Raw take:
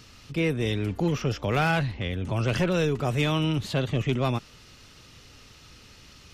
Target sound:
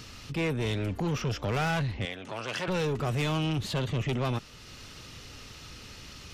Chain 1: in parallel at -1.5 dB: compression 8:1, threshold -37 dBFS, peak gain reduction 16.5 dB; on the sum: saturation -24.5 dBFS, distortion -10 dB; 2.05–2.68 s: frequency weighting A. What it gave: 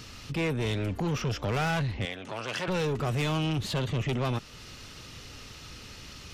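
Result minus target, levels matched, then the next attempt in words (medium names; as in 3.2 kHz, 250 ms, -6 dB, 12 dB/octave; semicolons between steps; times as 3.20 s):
compression: peak gain reduction -9 dB
in parallel at -1.5 dB: compression 8:1, threshold -47.5 dBFS, peak gain reduction 25.5 dB; on the sum: saturation -24.5 dBFS, distortion -11 dB; 2.05–2.68 s: frequency weighting A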